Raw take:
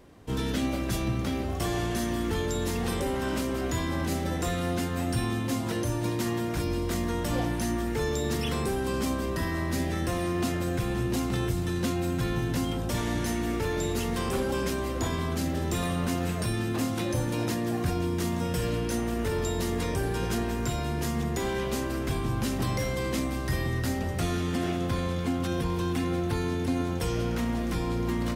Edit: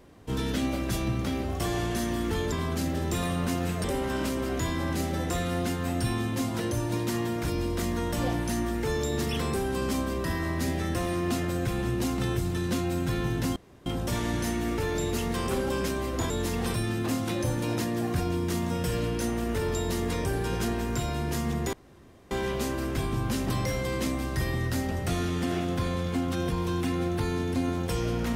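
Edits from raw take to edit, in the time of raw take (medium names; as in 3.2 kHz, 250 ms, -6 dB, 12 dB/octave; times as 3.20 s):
2.52–2.96 s: swap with 15.12–16.44 s
12.68 s: insert room tone 0.30 s
21.43 s: insert room tone 0.58 s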